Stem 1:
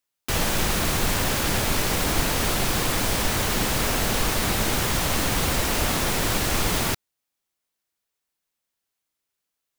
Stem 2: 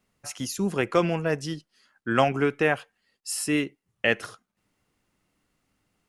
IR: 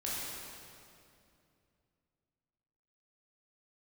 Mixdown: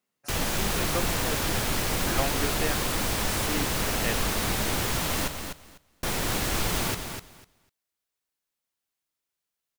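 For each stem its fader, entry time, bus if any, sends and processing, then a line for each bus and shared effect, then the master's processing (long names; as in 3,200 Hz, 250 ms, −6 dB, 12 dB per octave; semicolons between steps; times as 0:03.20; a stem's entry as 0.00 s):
−4.5 dB, 0.00 s, muted 0:05.28–0:06.03, no send, echo send −7.5 dB, no processing
−9.5 dB, 0.00 s, no send, no echo send, high-pass filter 210 Hz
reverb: not used
echo: repeating echo 249 ms, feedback 17%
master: no processing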